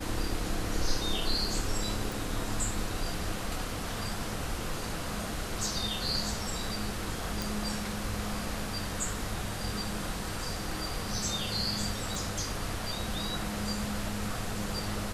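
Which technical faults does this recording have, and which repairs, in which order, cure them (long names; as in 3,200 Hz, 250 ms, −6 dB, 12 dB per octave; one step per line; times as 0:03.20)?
0:02.12: click
0:07.42: click
0:12.15: click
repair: click removal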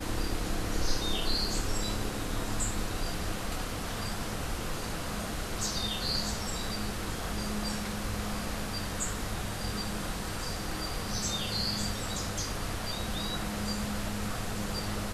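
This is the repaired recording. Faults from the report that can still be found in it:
0:02.12: click
0:12.15: click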